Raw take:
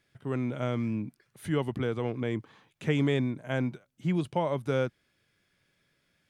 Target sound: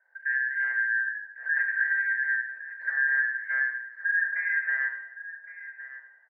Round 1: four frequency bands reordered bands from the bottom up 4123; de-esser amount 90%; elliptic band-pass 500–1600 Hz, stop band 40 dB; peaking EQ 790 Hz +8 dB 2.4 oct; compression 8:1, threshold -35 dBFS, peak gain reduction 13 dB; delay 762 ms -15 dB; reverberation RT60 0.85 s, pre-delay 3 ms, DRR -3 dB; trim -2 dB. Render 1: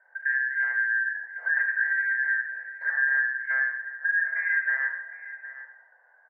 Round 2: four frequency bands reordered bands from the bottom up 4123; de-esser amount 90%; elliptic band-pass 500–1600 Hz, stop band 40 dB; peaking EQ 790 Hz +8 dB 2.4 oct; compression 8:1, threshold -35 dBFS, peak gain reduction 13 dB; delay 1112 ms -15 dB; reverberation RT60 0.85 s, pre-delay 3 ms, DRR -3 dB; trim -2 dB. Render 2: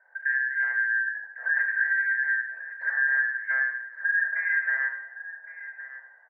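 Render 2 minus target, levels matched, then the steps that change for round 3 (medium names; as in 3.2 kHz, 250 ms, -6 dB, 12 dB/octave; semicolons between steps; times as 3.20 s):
1 kHz band +3.0 dB
change: peaking EQ 790 Hz -3 dB 2.4 oct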